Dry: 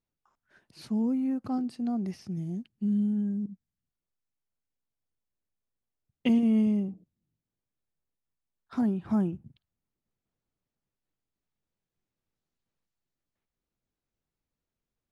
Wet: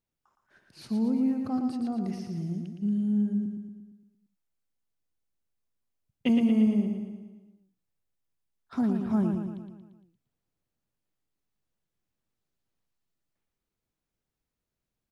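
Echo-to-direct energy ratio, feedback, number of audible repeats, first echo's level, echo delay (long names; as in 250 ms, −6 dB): −4.0 dB, 55%, 6, −5.5 dB, 115 ms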